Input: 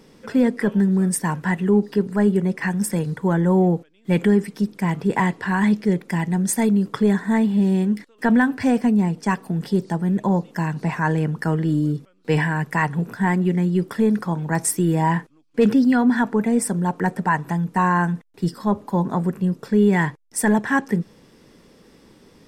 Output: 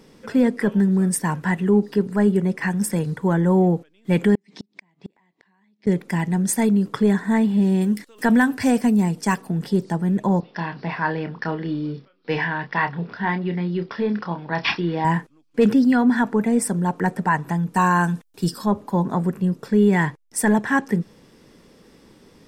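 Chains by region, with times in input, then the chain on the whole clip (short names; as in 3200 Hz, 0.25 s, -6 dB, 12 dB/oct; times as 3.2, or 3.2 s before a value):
4.35–5.87 speaker cabinet 210–6800 Hz, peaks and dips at 480 Hz -8 dB, 1400 Hz -9 dB, 2100 Hz +4 dB, 3900 Hz +6 dB + compressor 3:1, threshold -26 dBFS + flipped gate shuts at -22 dBFS, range -35 dB
7.81–9.42 high shelf 5400 Hz +11.5 dB + upward compressor, threshold -38 dBFS
10.4–15.05 careless resampling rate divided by 4×, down none, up filtered + low shelf 280 Hz -9.5 dB + doubler 29 ms -8 dB
17.74–18.66 high shelf 3000 Hz +10 dB + notch 2000 Hz, Q 6.4
whole clip: dry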